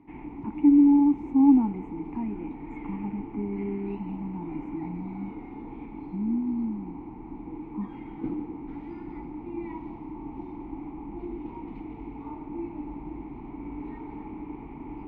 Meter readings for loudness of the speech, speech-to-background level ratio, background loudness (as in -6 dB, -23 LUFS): -24.5 LUFS, 14.5 dB, -39.0 LUFS